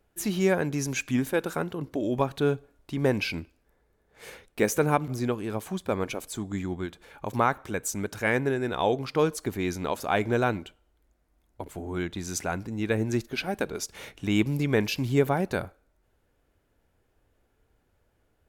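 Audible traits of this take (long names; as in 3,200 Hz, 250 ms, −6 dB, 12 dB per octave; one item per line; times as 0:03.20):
background noise floor −71 dBFS
spectral slope −5.5 dB per octave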